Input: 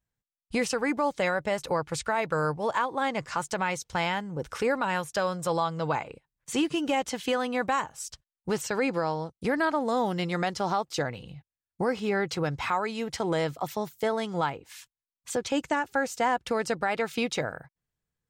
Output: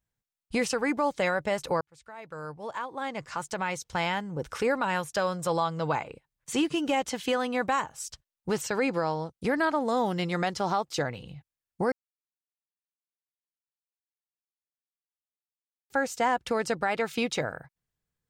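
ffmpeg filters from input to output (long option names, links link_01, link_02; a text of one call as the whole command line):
ffmpeg -i in.wav -filter_complex "[0:a]asplit=4[link_01][link_02][link_03][link_04];[link_01]atrim=end=1.81,asetpts=PTS-STARTPTS,afade=type=out:start_time=1.806:duration=0.004:curve=hsin[link_05];[link_02]atrim=start=1.81:end=11.92,asetpts=PTS-STARTPTS,afade=type=in:duration=2.39,afade=type=out:start_time=10.106:duration=0.004:curve=hsin[link_06];[link_03]atrim=start=11.92:end=15.9,asetpts=PTS-STARTPTS,volume=0[link_07];[link_04]atrim=start=15.9,asetpts=PTS-STARTPTS,afade=type=in:duration=0.004:curve=hsin[link_08];[link_05][link_06][link_07][link_08]concat=n=4:v=0:a=1" out.wav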